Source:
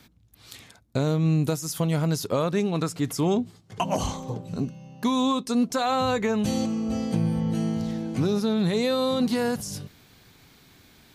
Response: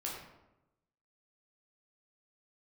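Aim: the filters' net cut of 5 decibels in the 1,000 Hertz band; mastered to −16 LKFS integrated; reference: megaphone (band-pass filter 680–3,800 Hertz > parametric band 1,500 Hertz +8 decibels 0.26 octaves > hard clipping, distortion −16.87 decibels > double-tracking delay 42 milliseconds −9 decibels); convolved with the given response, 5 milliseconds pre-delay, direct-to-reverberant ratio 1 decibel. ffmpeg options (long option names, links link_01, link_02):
-filter_complex "[0:a]equalizer=frequency=1000:width_type=o:gain=-6,asplit=2[link_01][link_02];[1:a]atrim=start_sample=2205,adelay=5[link_03];[link_02][link_03]afir=irnorm=-1:irlink=0,volume=-2.5dB[link_04];[link_01][link_04]amix=inputs=2:normalize=0,highpass=680,lowpass=3800,equalizer=frequency=1500:width_type=o:width=0.26:gain=8,asoftclip=type=hard:threshold=-24dB,asplit=2[link_05][link_06];[link_06]adelay=42,volume=-9dB[link_07];[link_05][link_07]amix=inputs=2:normalize=0,volume=17dB"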